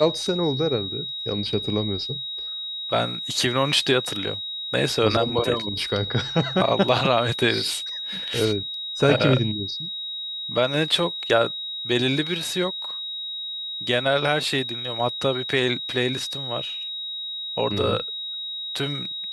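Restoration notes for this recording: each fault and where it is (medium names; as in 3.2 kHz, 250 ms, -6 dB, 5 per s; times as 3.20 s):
whine 3.8 kHz -29 dBFS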